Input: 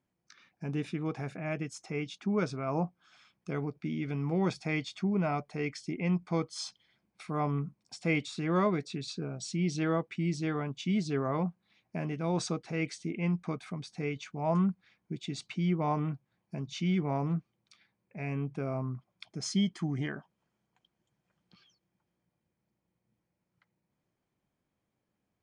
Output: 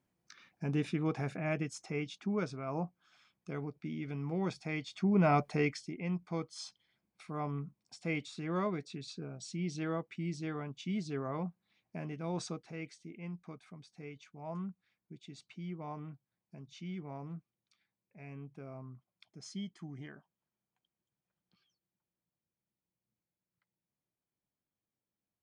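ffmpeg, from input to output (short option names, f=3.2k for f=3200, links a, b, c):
-af "volume=12.5dB,afade=t=out:st=1.38:d=1.12:silence=0.473151,afade=t=in:st=4.87:d=0.59:silence=0.266073,afade=t=out:st=5.46:d=0.44:silence=0.237137,afade=t=out:st=12.42:d=0.53:silence=0.473151"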